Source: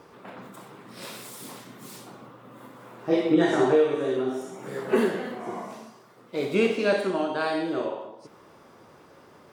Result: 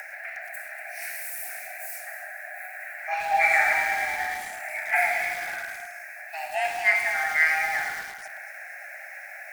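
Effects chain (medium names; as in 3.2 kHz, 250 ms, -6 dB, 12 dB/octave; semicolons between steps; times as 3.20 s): FFT filter 300 Hz 0 dB, 540 Hz -30 dB, 1.2 kHz +12 dB, 1.9 kHz +13 dB, 2.7 kHz -16 dB, 4.6 kHz -2 dB, 16 kHz +14 dB; upward compressor, threshold -29 dBFS; echo whose repeats swap between lows and highs 119 ms, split 930 Hz, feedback 69%, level -8 dB; frequency shift +480 Hz; dynamic bell 1.3 kHz, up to +3 dB, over -32 dBFS, Q 1.2; bit-crushed delay 108 ms, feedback 80%, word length 5-bit, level -9.5 dB; trim -2 dB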